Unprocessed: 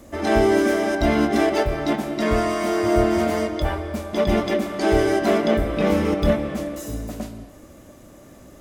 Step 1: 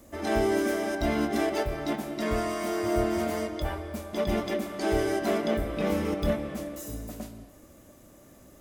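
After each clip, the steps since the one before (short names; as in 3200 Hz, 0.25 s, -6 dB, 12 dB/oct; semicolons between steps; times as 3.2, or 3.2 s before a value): high shelf 9500 Hz +9.5 dB; gain -8 dB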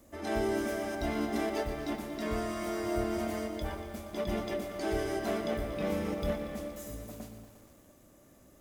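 lo-fi delay 0.118 s, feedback 80%, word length 8-bit, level -12 dB; gain -6 dB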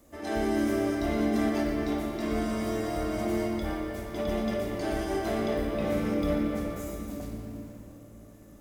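flutter echo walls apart 9.3 m, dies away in 0.32 s; shoebox room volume 170 m³, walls hard, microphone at 0.42 m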